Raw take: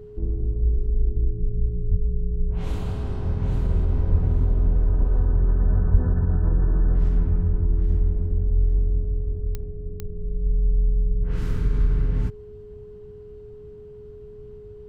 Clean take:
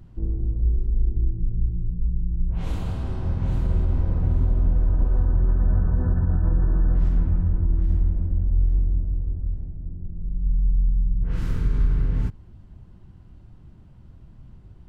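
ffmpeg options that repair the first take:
-filter_complex "[0:a]adeclick=t=4,bandreject=f=420:w=30,asplit=3[a][b][c];[a]afade=t=out:st=1.9:d=0.02[d];[b]highpass=f=140:w=0.5412,highpass=f=140:w=1.3066,afade=t=in:st=1.9:d=0.02,afade=t=out:st=2.02:d=0.02[e];[c]afade=t=in:st=2.02:d=0.02[f];[d][e][f]amix=inputs=3:normalize=0,asplit=3[g][h][i];[g]afade=t=out:st=4.11:d=0.02[j];[h]highpass=f=140:w=0.5412,highpass=f=140:w=1.3066,afade=t=in:st=4.11:d=0.02,afade=t=out:st=4.23:d=0.02[k];[i]afade=t=in:st=4.23:d=0.02[l];[j][k][l]amix=inputs=3:normalize=0,asplit=3[m][n][o];[m]afade=t=out:st=5.91:d=0.02[p];[n]highpass=f=140:w=0.5412,highpass=f=140:w=1.3066,afade=t=in:st=5.91:d=0.02,afade=t=out:st=6.03:d=0.02[q];[o]afade=t=in:st=6.03:d=0.02[r];[p][q][r]amix=inputs=3:normalize=0"

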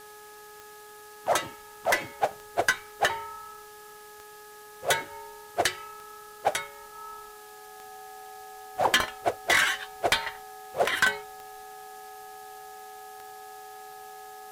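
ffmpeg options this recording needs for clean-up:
-af "adeclick=t=4,bandreject=f=420.7:t=h:w=4,bandreject=f=841.4:t=h:w=4,bandreject=f=1.2621k:t=h:w=4,bandreject=f=1.6828k:t=h:w=4,bandreject=f=760:w=30,afwtdn=0.0025"

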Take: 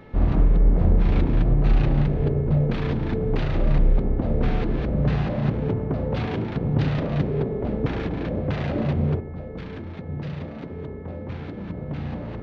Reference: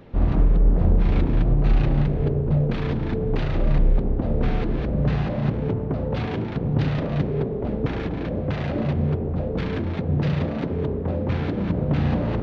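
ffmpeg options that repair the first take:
-af "bandreject=f=432.5:t=h:w=4,bandreject=f=865:t=h:w=4,bandreject=f=1.2975k:t=h:w=4,bandreject=f=1.73k:t=h:w=4,bandreject=f=2.1625k:t=h:w=4,asetnsamples=n=441:p=0,asendcmd='9.2 volume volume 9dB',volume=0dB"

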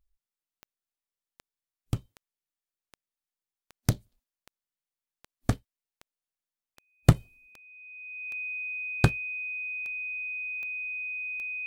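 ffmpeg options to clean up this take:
-af "adeclick=t=4,bandreject=f=2.5k:w=30"

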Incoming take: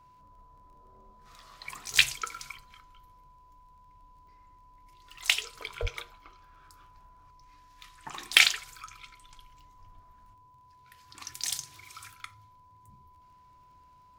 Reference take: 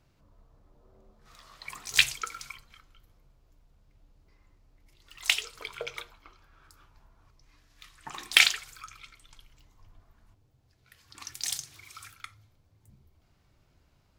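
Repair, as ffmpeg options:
-filter_complex "[0:a]adeclick=t=4,bandreject=f=1k:w=30,asplit=3[a][b][c];[a]afade=t=out:st=5.81:d=0.02[d];[b]highpass=f=140:w=0.5412,highpass=f=140:w=1.3066,afade=t=in:st=5.81:d=0.02,afade=t=out:st=5.93:d=0.02[e];[c]afade=t=in:st=5.93:d=0.02[f];[d][e][f]amix=inputs=3:normalize=0"

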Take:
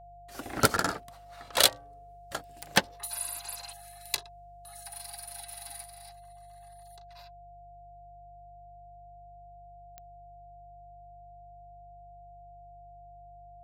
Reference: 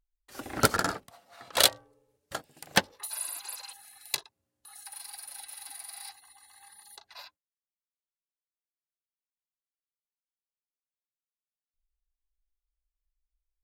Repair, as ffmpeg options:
-af "adeclick=t=4,bandreject=f=49.8:t=h:w=4,bandreject=f=99.6:t=h:w=4,bandreject=f=149.4:t=h:w=4,bandreject=f=700:w=30,asetnsamples=n=441:p=0,asendcmd='5.84 volume volume 8.5dB',volume=0dB"

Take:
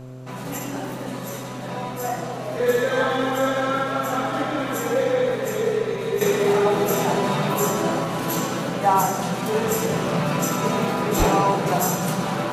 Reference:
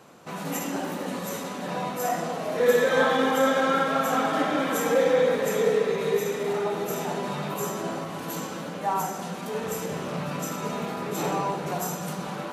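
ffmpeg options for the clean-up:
-filter_complex "[0:a]bandreject=f=128.1:t=h:w=4,bandreject=f=256.2:t=h:w=4,bandreject=f=384.3:t=h:w=4,bandreject=f=512.4:t=h:w=4,bandreject=f=640.5:t=h:w=4,asplit=3[a][b][c];[a]afade=t=out:st=11.18:d=0.02[d];[b]highpass=f=140:w=0.5412,highpass=f=140:w=1.3066,afade=t=in:st=11.18:d=0.02,afade=t=out:st=11.3:d=0.02[e];[c]afade=t=in:st=11.3:d=0.02[f];[d][e][f]amix=inputs=3:normalize=0,agate=range=-21dB:threshold=-23dB,asetnsamples=n=441:p=0,asendcmd='6.21 volume volume -8.5dB',volume=0dB"

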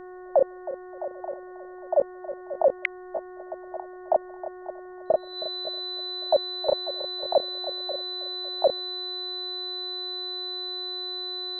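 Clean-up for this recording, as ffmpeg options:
-af "bandreject=f=365.6:t=h:w=4,bandreject=f=731.2:t=h:w=4,bandreject=f=1.0968k:t=h:w=4,bandreject=f=1.4624k:t=h:w=4,bandreject=f=1.828k:t=h:w=4,bandreject=f=4k:w=30,agate=range=-21dB:threshold=-34dB"

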